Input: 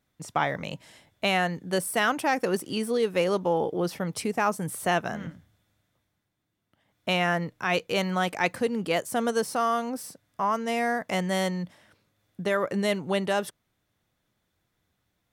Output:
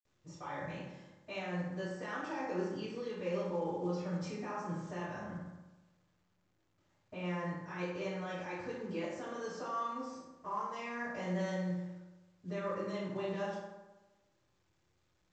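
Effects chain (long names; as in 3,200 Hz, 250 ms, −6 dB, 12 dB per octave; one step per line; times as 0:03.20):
dynamic equaliser 380 Hz, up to −3 dB, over −36 dBFS, Q 1.6
brickwall limiter −21 dBFS, peak gain reduction 10 dB
0:05.14–0:07.19: high-frequency loss of the air 270 metres
convolution reverb RT60 1.1 s, pre-delay 47 ms
level +13.5 dB
mu-law 128 kbit/s 16,000 Hz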